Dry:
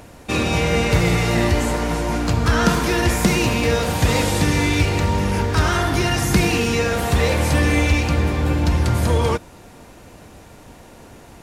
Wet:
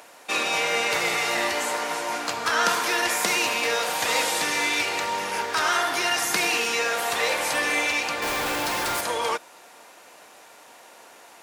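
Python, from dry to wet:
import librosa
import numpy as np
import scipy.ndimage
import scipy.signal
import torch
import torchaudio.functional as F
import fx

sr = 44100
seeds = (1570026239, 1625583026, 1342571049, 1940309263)

y = scipy.signal.sosfilt(scipy.signal.butter(2, 700.0, 'highpass', fs=sr, output='sos'), x)
y = fx.quant_companded(y, sr, bits=2, at=(8.22, 9.01))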